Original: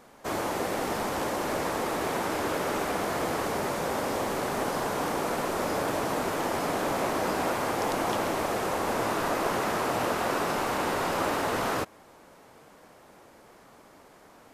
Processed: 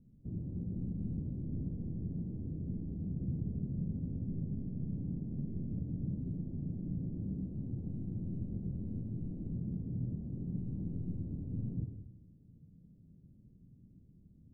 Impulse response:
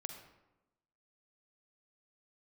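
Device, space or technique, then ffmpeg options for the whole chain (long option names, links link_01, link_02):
club heard from the street: -filter_complex "[0:a]alimiter=limit=-21dB:level=0:latency=1:release=112,lowpass=frequency=180:width=0.5412,lowpass=frequency=180:width=1.3066[link_01];[1:a]atrim=start_sample=2205[link_02];[link_01][link_02]afir=irnorm=-1:irlink=0,volume=9dB"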